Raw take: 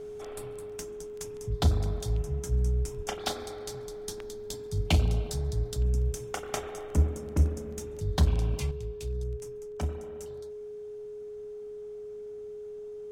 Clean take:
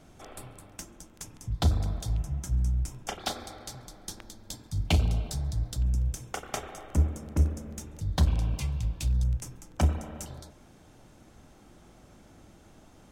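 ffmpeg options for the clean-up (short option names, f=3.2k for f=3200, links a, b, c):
-filter_complex "[0:a]bandreject=f=420:w=30,asplit=3[a][b][c];[a]afade=t=out:st=2.96:d=0.02[d];[b]highpass=f=140:w=0.5412,highpass=f=140:w=1.3066,afade=t=in:st=2.96:d=0.02,afade=t=out:st=3.08:d=0.02[e];[c]afade=t=in:st=3.08:d=0.02[f];[d][e][f]amix=inputs=3:normalize=0,asetnsamples=n=441:p=0,asendcmd='8.71 volume volume 8dB',volume=0dB"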